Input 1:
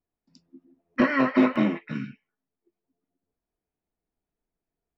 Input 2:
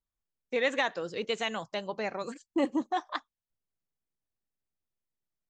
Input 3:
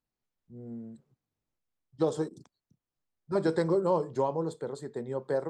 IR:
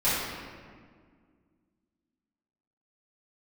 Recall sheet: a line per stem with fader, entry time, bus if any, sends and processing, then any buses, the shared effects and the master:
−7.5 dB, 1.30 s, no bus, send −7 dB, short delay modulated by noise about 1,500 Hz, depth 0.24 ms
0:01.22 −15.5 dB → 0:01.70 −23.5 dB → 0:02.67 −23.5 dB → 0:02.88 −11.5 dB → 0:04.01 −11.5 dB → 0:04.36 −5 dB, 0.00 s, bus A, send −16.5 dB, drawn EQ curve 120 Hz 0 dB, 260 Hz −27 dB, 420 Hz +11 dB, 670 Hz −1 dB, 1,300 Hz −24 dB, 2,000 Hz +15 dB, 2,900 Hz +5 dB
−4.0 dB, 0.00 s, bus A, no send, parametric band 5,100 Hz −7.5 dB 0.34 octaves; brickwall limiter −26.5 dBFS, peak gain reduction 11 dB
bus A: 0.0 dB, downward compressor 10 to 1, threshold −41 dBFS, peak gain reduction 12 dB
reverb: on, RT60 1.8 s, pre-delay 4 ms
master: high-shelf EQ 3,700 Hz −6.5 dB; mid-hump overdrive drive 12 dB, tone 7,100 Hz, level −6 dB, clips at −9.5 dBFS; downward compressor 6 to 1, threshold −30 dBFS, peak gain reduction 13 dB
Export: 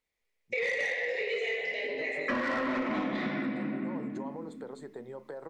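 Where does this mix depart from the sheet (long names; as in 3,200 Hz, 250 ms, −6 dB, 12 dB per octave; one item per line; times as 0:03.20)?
stem 1: missing short delay modulated by noise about 1,500 Hz, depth 0.24 ms
stem 2 −15.5 dB → −4.0 dB
reverb return +7.0 dB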